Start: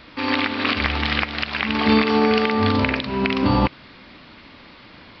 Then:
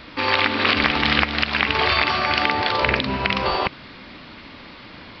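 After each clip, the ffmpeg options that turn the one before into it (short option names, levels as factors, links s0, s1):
-af "afftfilt=real='re*lt(hypot(re,im),0.398)':imag='im*lt(hypot(re,im),0.398)':win_size=1024:overlap=0.75,volume=1.58"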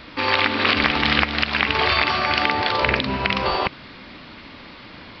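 -af anull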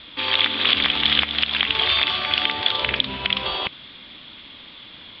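-af "lowpass=f=3400:t=q:w=9.1,volume=0.376"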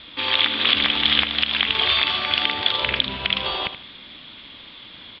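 -af "aecho=1:1:78|156|234:0.251|0.0703|0.0197"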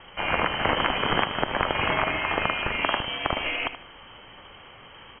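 -af "lowpass=f=2800:t=q:w=0.5098,lowpass=f=2800:t=q:w=0.6013,lowpass=f=2800:t=q:w=0.9,lowpass=f=2800:t=q:w=2.563,afreqshift=-3300"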